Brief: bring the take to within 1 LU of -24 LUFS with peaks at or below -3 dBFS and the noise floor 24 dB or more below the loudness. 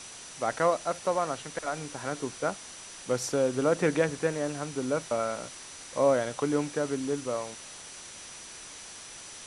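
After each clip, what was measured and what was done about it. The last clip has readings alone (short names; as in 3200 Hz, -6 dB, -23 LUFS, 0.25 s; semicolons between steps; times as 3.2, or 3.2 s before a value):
steady tone 5900 Hz; tone level -49 dBFS; noise floor -45 dBFS; noise floor target -54 dBFS; loudness -30.0 LUFS; peak -11.5 dBFS; loudness target -24.0 LUFS
-> notch 5900 Hz, Q 30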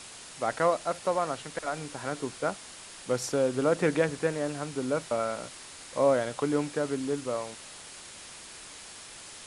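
steady tone none; noise floor -46 dBFS; noise floor target -54 dBFS
-> denoiser 8 dB, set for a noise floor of -46 dBFS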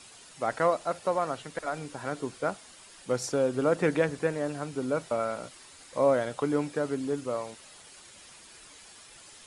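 noise floor -52 dBFS; noise floor target -54 dBFS
-> denoiser 6 dB, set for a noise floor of -52 dBFS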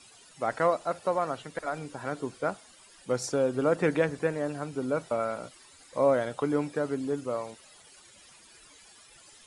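noise floor -55 dBFS; loudness -30.0 LUFS; peak -11.5 dBFS; loudness target -24.0 LUFS
-> gain +6 dB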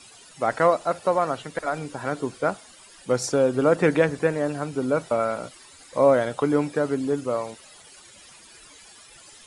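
loudness -24.0 LUFS; peak -5.5 dBFS; noise floor -49 dBFS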